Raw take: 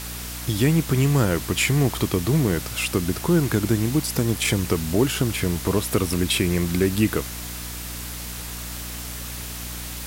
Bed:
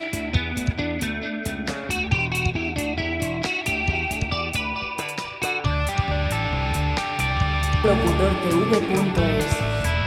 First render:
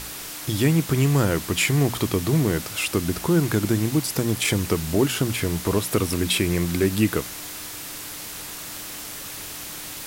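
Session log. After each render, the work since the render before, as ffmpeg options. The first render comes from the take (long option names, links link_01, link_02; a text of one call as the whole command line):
ffmpeg -i in.wav -af "bandreject=frequency=60:width_type=h:width=6,bandreject=frequency=120:width_type=h:width=6,bandreject=frequency=180:width_type=h:width=6,bandreject=frequency=240:width_type=h:width=6" out.wav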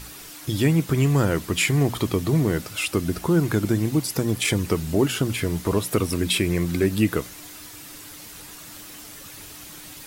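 ffmpeg -i in.wav -af "afftdn=noise_reduction=8:noise_floor=-36" out.wav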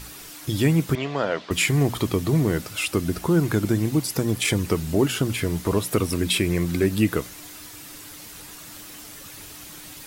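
ffmpeg -i in.wav -filter_complex "[0:a]asettb=1/sr,asplit=3[link_01][link_02][link_03];[link_01]atrim=end=0.954[link_04];[link_02]atrim=start=0.95:end=1.51,asetpts=PTS-STARTPTS,afade=type=in:duration=0.004:curve=qsin,afade=type=out:start_time=0.556:duration=0.004:curve=qsin,highpass=330,equalizer=frequency=340:width_type=q:width=4:gain=-8,equalizer=frequency=630:width_type=q:width=4:gain=7,equalizer=frequency=3400:width_type=q:width=4:gain=4,lowpass=frequency=4800:width=0.5412,lowpass=frequency=4800:width=1.3066[link_05];[link_03]atrim=start=1.506[link_06];[link_04][link_05]acrossfade=duration=0.004:curve1=hsin:curve2=qsin[link_07];[link_07][link_06]acrossfade=duration=0.004:curve1=qsin:curve2=hsin" out.wav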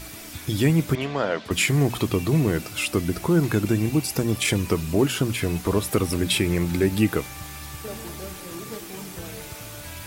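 ffmpeg -i in.wav -i bed.wav -filter_complex "[1:a]volume=-17.5dB[link_01];[0:a][link_01]amix=inputs=2:normalize=0" out.wav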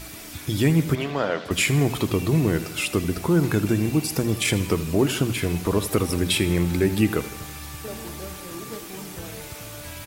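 ffmpeg -i in.wav -af "aecho=1:1:80|160|240|320|400|480:0.178|0.107|0.064|0.0384|0.023|0.0138" out.wav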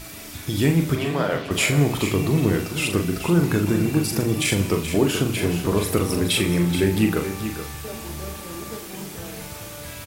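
ffmpeg -i in.wav -filter_complex "[0:a]asplit=2[link_01][link_02];[link_02]adelay=41,volume=-6dB[link_03];[link_01][link_03]amix=inputs=2:normalize=0,aecho=1:1:428:0.316" out.wav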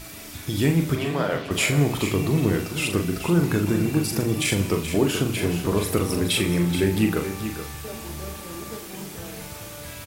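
ffmpeg -i in.wav -af "volume=-1.5dB" out.wav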